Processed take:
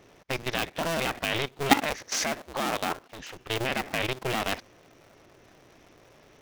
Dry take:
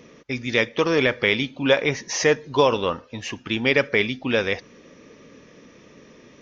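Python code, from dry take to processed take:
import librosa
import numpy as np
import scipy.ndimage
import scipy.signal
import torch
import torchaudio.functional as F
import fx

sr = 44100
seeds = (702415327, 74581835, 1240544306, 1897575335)

y = fx.cycle_switch(x, sr, every=2, mode='inverted')
y = fx.low_shelf(y, sr, hz=180.0, db=-8.0, at=(1.82, 3.34))
y = fx.level_steps(y, sr, step_db=14)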